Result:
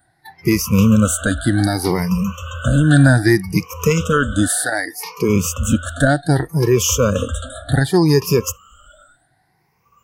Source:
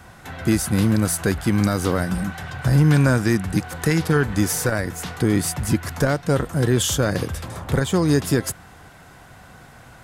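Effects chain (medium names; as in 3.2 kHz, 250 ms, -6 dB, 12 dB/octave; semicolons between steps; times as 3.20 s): drifting ripple filter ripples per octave 0.8, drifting +0.65 Hz, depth 17 dB; spectral noise reduction 22 dB; 4.47–5.28 s: high-pass 580 Hz -> 170 Hz 12 dB/octave; trim +1.5 dB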